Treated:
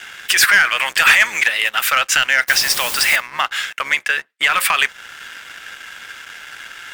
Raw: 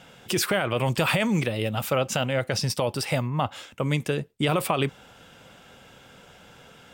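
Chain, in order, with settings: octave divider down 1 oct, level +2 dB; resonant high-pass 1.7 kHz, resonance Q 3.5; in parallel at -2.5 dB: compression, threshold -34 dBFS, peak gain reduction 17 dB; 2.48–3.16 s: on the sum: word length cut 6-bit, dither triangular; 3.82–4.54 s: low-pass 3.2 kHz 6 dB/octave; waveshaping leveller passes 2; trim +3.5 dB

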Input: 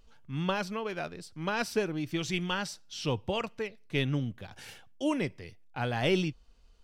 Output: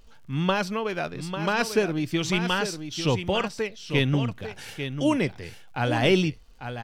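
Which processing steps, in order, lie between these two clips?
on a send: delay 846 ms -9 dB; on the sum: crackle 99 per s -57 dBFS; trim +6.5 dB

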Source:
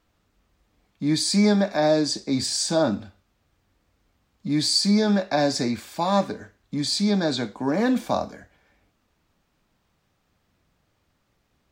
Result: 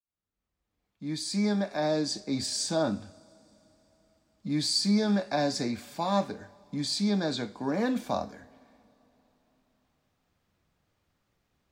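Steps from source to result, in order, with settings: fade-in on the opening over 2.13 s; two-slope reverb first 0.24 s, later 3.8 s, from -18 dB, DRR 16.5 dB; trim -6 dB

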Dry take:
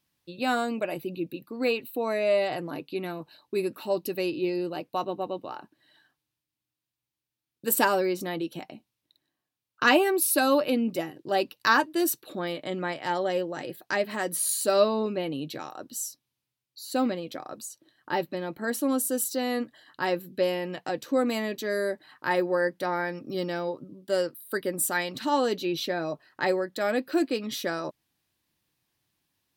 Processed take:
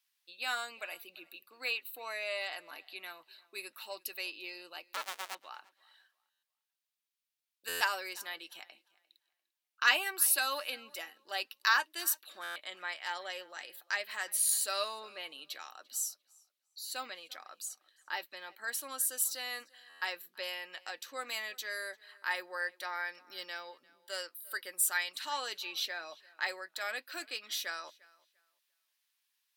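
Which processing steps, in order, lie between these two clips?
4.88–5.35 s: cycle switcher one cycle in 2, inverted; high-pass 1.5 kHz 12 dB/octave; tape echo 347 ms, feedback 23%, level -23 dB, low-pass 5.1 kHz; buffer glitch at 6.30/7.68/12.43/19.89 s, samples 512, times 10; trim -1.5 dB

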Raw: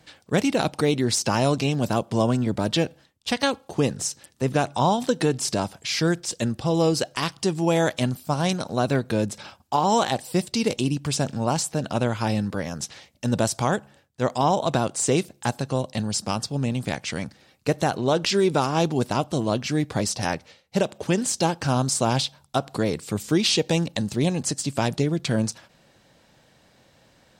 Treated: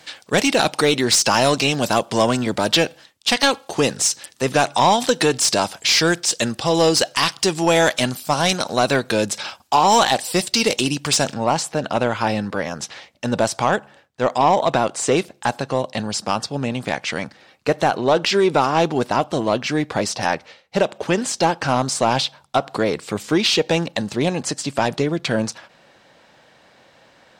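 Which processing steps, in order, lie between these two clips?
treble shelf 3.2 kHz +8.5 dB, from 11.34 s -5 dB; overdrive pedal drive 16 dB, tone 3.9 kHz, clips at -2.5 dBFS

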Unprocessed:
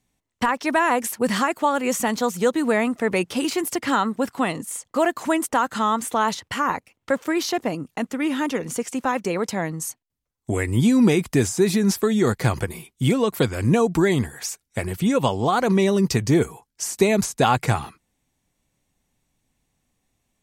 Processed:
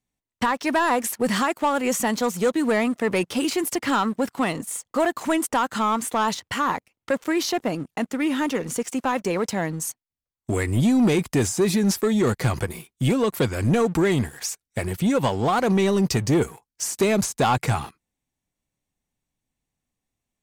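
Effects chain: waveshaping leveller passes 2; trim -7 dB

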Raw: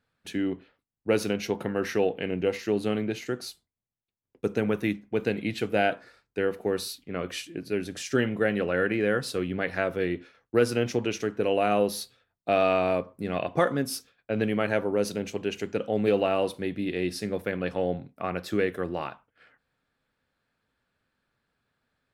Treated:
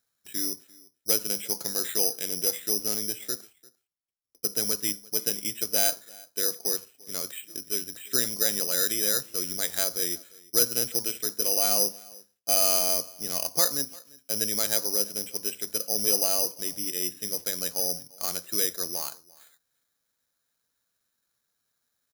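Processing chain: bass shelf 350 Hz -7 dB; delay 345 ms -23.5 dB; careless resampling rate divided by 8×, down filtered, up zero stuff; trim -7 dB

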